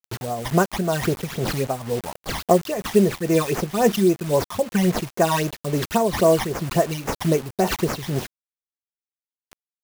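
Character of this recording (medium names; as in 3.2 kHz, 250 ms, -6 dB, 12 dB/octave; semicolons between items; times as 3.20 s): aliases and images of a low sample rate 8.7 kHz, jitter 20%; phasing stages 12, 3.7 Hz, lowest notch 430–3900 Hz; a quantiser's noise floor 6-bit, dither none; tremolo triangle 2.1 Hz, depth 60%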